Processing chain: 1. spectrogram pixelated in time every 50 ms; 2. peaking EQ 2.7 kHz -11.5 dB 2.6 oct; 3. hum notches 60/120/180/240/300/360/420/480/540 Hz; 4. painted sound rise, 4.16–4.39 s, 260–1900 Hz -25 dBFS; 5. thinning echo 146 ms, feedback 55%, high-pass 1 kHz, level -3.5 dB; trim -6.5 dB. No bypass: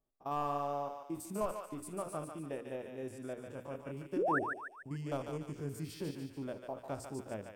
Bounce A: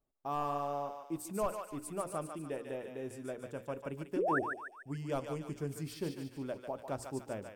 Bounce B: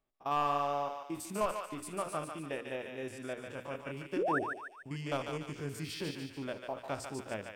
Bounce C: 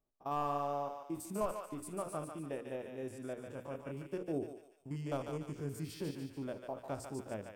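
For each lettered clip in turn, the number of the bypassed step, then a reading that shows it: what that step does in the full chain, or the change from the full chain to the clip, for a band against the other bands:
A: 1, 8 kHz band +1.5 dB; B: 2, 4 kHz band +7.5 dB; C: 4, 2 kHz band -8.5 dB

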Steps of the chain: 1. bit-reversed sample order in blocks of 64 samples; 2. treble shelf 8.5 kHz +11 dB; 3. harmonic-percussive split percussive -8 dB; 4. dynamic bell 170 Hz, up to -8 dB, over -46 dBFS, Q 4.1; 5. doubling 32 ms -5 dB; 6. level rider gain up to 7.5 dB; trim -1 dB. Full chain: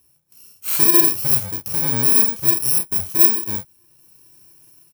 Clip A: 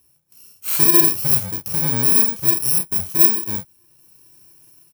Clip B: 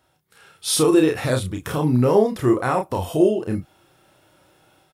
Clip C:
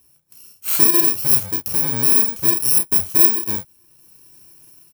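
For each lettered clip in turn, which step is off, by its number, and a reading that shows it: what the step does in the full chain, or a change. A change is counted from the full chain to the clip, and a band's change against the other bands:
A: 4, 125 Hz band +2.0 dB; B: 1, 8 kHz band -16.5 dB; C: 3, momentary loudness spread change -1 LU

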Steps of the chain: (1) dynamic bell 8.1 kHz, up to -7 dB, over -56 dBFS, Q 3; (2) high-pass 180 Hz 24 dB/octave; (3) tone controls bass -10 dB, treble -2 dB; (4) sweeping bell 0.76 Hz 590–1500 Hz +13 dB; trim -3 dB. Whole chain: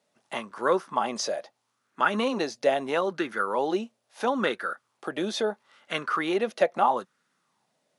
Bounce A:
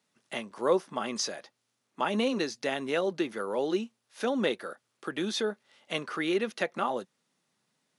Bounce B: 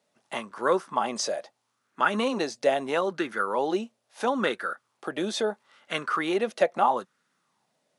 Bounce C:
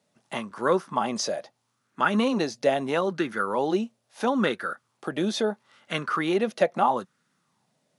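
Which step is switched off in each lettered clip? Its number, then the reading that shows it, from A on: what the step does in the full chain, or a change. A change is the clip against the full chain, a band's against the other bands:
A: 4, 1 kHz band -7.5 dB; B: 1, 8 kHz band +2.0 dB; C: 3, 125 Hz band +7.0 dB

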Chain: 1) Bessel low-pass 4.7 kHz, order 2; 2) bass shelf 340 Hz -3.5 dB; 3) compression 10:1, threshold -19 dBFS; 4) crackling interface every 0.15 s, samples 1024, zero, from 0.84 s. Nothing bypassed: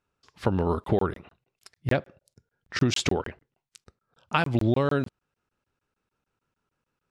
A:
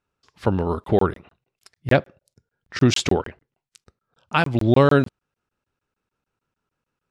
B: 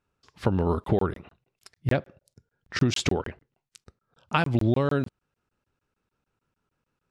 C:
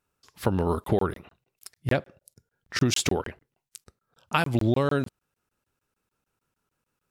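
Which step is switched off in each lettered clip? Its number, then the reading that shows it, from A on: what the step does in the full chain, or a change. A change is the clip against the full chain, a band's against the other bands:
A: 3, mean gain reduction 4.0 dB; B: 2, 125 Hz band +2.0 dB; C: 1, 8 kHz band +5.0 dB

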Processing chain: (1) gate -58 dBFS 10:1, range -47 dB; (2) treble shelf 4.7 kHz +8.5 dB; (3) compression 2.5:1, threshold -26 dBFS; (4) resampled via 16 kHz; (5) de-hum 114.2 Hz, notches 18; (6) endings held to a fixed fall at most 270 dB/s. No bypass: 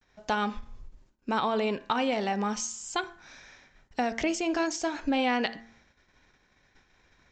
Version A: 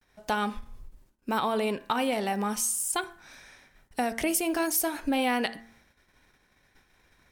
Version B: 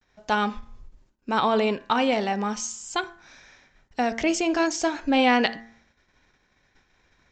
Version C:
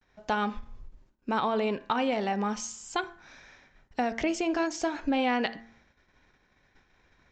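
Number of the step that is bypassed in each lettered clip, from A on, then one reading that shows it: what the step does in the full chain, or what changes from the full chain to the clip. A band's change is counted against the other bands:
4, 8 kHz band +7.0 dB; 3, momentary loudness spread change +4 LU; 2, 8 kHz band -4.0 dB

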